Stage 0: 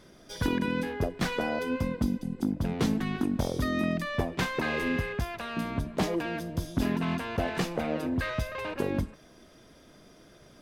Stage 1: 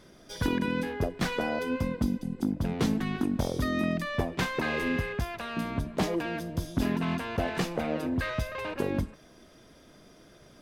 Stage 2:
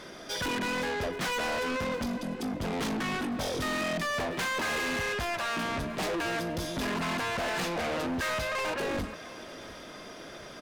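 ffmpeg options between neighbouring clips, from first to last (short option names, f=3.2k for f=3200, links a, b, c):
-af anull
-filter_complex "[0:a]asplit=2[a][b];[b]highpass=f=720:p=1,volume=15dB,asoftclip=type=tanh:threshold=-16.5dB[c];[a][c]amix=inputs=2:normalize=0,lowpass=f=3.9k:p=1,volume=-6dB,asoftclip=type=tanh:threshold=-34.5dB,aecho=1:1:703|1406|2109|2812|3515:0.112|0.0617|0.0339|0.0187|0.0103,volume=5dB"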